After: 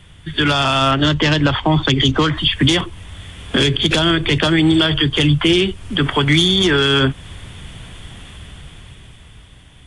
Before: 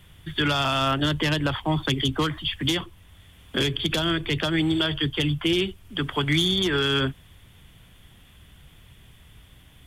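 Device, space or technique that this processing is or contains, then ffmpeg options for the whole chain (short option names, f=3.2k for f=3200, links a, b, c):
low-bitrate web radio: -filter_complex "[0:a]asettb=1/sr,asplit=3[a][b][c];[a]atrim=end=0.914[d];[b]atrim=start=0.91:end=2.37,asetpts=PTS-STARTPTS,afade=t=in:d=0.004:c=qsin,afade=t=out:st=1.456:d=0.004:c=qsin,lowpass=f=7.2k:w=0.5412,lowpass=f=7.2k:w=1.3066[e];[c]atrim=start=2.366[f];[d][e]acrossfade=d=0.004:c1=hsin:c2=qsin[g];[g][f]acrossfade=d=0.004:c1=qsin:c2=hsin,dynaudnorm=f=220:g=13:m=11dB,alimiter=limit=-12.5dB:level=0:latency=1:release=214,volume=7dB" -ar 22050 -c:a aac -b:a 48k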